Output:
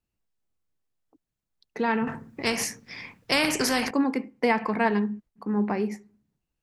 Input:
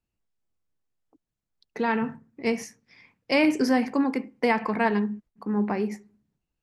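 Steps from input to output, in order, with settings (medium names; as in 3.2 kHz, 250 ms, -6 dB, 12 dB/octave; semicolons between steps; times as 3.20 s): 2.07–3.91 s: spectrum-flattening compressor 2:1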